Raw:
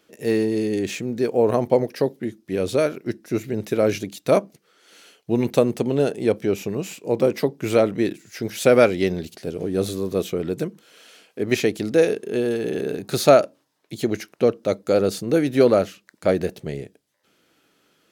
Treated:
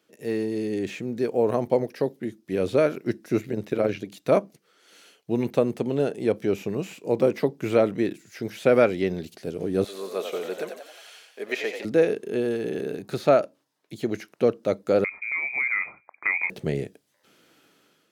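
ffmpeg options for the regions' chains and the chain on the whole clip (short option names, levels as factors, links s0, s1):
-filter_complex "[0:a]asettb=1/sr,asplit=3[s0][s1][s2];[s0]atrim=end=3.414[s3];[s1]atrim=start=3.41:end=4.12,asetpts=PTS-STARTPTS,afade=t=in:d=0.004:c=qsin,afade=t=out:st=0.706:d=0.004:c=qsin,acrossover=split=4200[s4][s5];[s5]acompressor=threshold=0.00282:ratio=4:attack=1:release=60[s6];[s4][s6]amix=inputs=2:normalize=0,tremolo=f=87:d=0.667[s7];[s2]atrim=start=4.116[s8];[s3][s7]acrossfade=d=0.004:c1=hsin:c2=qsin[s9];[s9][s8]acrossfade=d=0.004:c1=qsin:c2=hsin,asettb=1/sr,asplit=3[s10][s11][s12];[s10]atrim=end=9.844[s13];[s11]atrim=start=9.84:end=11.85,asetpts=PTS-STARTPTS,afade=t=in:d=0.004:c=qsin,afade=t=out:st=2.006:d=0.004:c=qsin,highpass=640,aecho=1:1:4.9:0.32,atrim=end_sample=88641,asplit=7[s14][s15][s16][s17][s18][s19][s20];[s15]adelay=90,afreqshift=51,volume=0.422[s21];[s16]adelay=180,afreqshift=102,volume=0.216[s22];[s17]adelay=270,afreqshift=153,volume=0.11[s23];[s18]adelay=360,afreqshift=204,volume=0.0562[s24];[s19]adelay=450,afreqshift=255,volume=0.0285[s25];[s20]adelay=540,afreqshift=306,volume=0.0146[s26];[s14][s21][s22][s23][s24][s25][s26]amix=inputs=7:normalize=0,atrim=end_sample=88641[s27];[s12]atrim=start=11.846[s28];[s13][s27]acrossfade=d=0.004:c1=hsin:c2=qsin[s29];[s29][s28]acrossfade=d=0.004:c1=qsin:c2=hsin,asettb=1/sr,asplit=3[s30][s31][s32];[s30]atrim=end=15.044[s33];[s31]atrim=start=15.04:end=16.5,asetpts=PTS-STARTPTS,afade=t=in:d=0.004:c=qsin,afade=t=out:st=1.456:d=0.004:c=qsin,lowpass=f=2200:t=q:w=0.5098,lowpass=f=2200:t=q:w=0.6013,lowpass=f=2200:t=q:w=0.9,lowpass=f=2200:t=q:w=2.563,afreqshift=-2600,acompressor=threshold=0.0631:ratio=3:attack=3.2:release=140:knee=1:detection=peak[s34];[s32]atrim=start=16.496[s35];[s33][s34]acrossfade=d=0.004:c1=hsin:c2=qsin[s36];[s36][s35]acrossfade=d=0.004:c1=qsin:c2=hsin,dynaudnorm=f=300:g=5:m=3.76,highpass=87,acrossover=split=3200[s37][s38];[s38]acompressor=threshold=0.0112:ratio=4:attack=1:release=60[s39];[s37][s39]amix=inputs=2:normalize=0,volume=0.447"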